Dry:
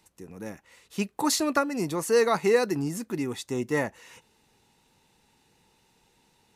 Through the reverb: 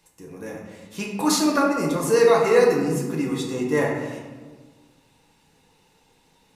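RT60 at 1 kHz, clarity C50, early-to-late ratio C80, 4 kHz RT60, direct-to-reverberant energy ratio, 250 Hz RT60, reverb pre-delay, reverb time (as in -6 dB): 1.3 s, 2.5 dB, 4.5 dB, 0.75 s, -2.5 dB, 1.8 s, 4 ms, 1.4 s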